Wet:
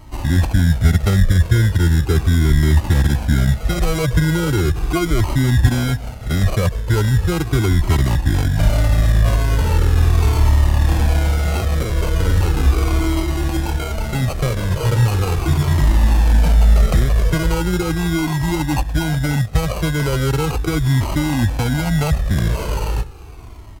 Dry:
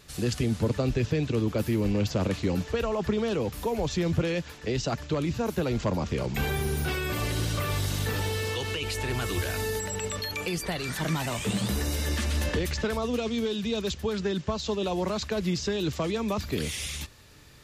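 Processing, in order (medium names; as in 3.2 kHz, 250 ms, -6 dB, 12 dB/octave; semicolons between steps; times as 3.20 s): tone controls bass +8 dB, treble +2 dB; in parallel at -0.5 dB: peak limiter -19.5 dBFS, peak gain reduction 10.5 dB; on the sum: sample-rate reducer 2.4 kHz, jitter 0%; on a send: delay 422 ms -22.5 dB; on the sum: speed mistake 45 rpm record played at 33 rpm; Shepard-style flanger falling 0.38 Hz; trim +7 dB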